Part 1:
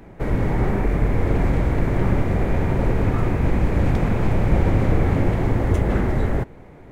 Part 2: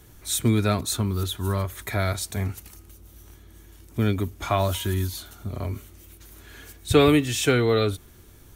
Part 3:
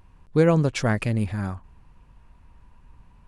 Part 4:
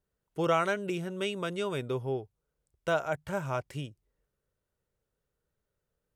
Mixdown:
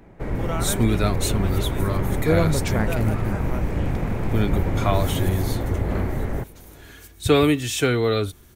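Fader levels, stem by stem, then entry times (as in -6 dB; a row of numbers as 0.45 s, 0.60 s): -5.0 dB, 0.0 dB, -2.5 dB, -4.0 dB; 0.00 s, 0.35 s, 1.90 s, 0.00 s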